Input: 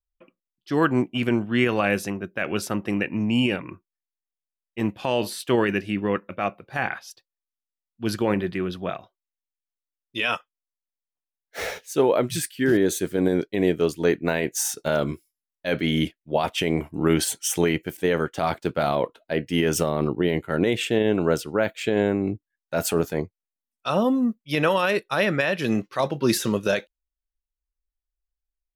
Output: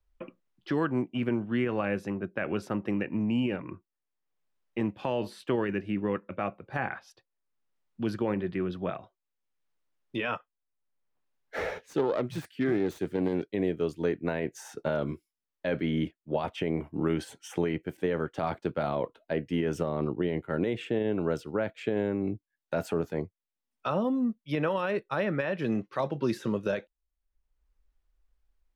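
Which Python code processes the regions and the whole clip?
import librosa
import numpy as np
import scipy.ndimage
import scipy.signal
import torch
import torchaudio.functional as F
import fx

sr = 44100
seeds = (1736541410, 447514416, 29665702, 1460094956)

y = fx.chain(x, sr, fx.self_delay(depth_ms=0.18),
    fx.highpass(hz=45.0, slope=12), at=(11.83, 13.49))
y = fx.lowpass(y, sr, hz=1400.0, slope=6)
y = fx.notch(y, sr, hz=700.0, q=21.0)
y = fx.band_squash(y, sr, depth_pct=70)
y = y * librosa.db_to_amplitude(-6.0)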